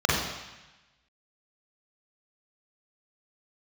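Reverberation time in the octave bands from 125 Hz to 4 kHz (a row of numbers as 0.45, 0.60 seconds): 1.2, 1.1, 0.95, 1.1, 1.2, 1.2 seconds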